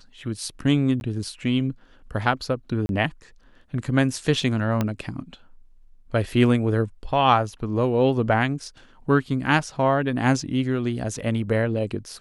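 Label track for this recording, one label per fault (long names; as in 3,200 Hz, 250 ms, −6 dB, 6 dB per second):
1.000000	1.010000	drop-out 11 ms
2.860000	2.890000	drop-out 31 ms
4.810000	4.810000	click −10 dBFS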